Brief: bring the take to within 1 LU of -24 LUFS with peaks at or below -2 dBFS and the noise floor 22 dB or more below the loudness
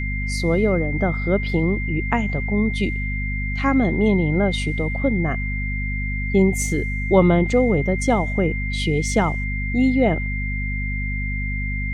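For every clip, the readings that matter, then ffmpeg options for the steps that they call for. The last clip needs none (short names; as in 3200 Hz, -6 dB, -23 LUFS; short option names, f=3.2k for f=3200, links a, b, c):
hum 50 Hz; harmonics up to 250 Hz; hum level -23 dBFS; steady tone 2100 Hz; tone level -28 dBFS; loudness -21.0 LUFS; peak -3.0 dBFS; loudness target -24.0 LUFS
-> -af "bandreject=f=50:t=h:w=6,bandreject=f=100:t=h:w=6,bandreject=f=150:t=h:w=6,bandreject=f=200:t=h:w=6,bandreject=f=250:t=h:w=6"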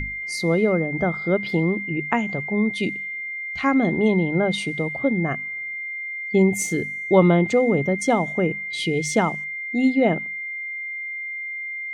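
hum none; steady tone 2100 Hz; tone level -28 dBFS
-> -af "bandreject=f=2.1k:w=30"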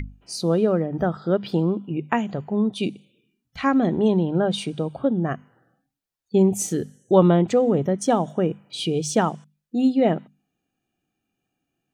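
steady tone none; loudness -22.5 LUFS; peak -4.0 dBFS; loudness target -24.0 LUFS
-> -af "volume=-1.5dB"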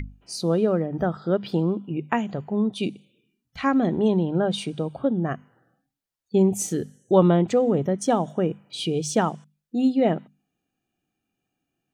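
loudness -24.0 LUFS; peak -5.5 dBFS; noise floor -82 dBFS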